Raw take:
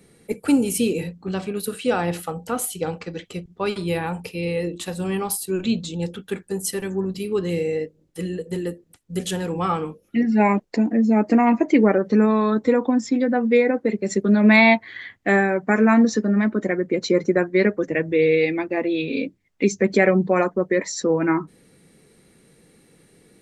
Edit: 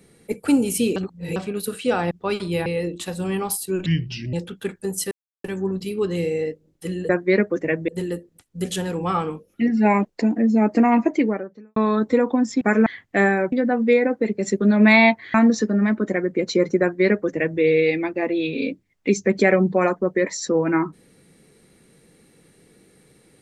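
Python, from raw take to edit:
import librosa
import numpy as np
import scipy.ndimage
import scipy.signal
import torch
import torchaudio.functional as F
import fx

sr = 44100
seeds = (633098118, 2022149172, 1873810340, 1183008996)

y = fx.edit(x, sr, fx.reverse_span(start_s=0.96, length_s=0.4),
    fx.cut(start_s=2.11, length_s=1.36),
    fx.cut(start_s=4.02, length_s=0.44),
    fx.speed_span(start_s=5.66, length_s=0.34, speed=0.72),
    fx.insert_silence(at_s=6.78, length_s=0.33),
    fx.fade_out_span(start_s=11.63, length_s=0.68, curve='qua'),
    fx.swap(start_s=13.16, length_s=1.82, other_s=15.64, other_length_s=0.25),
    fx.duplicate(start_s=17.36, length_s=0.79, to_s=8.43), tone=tone)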